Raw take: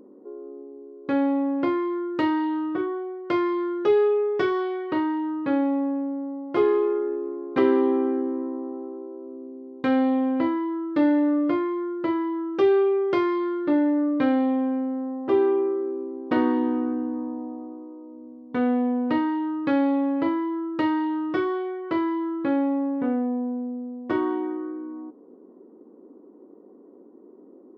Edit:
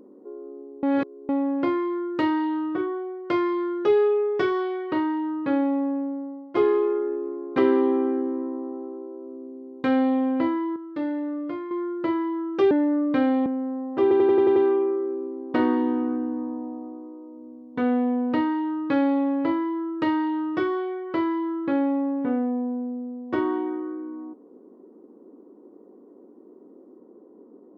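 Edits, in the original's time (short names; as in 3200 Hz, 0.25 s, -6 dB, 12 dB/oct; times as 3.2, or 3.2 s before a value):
0.83–1.29 reverse
5.93–6.55 fade out equal-power, to -11 dB
10.76–11.71 gain -8 dB
12.71–13.77 cut
14.52–14.77 cut
15.33 stutter 0.09 s, 7 plays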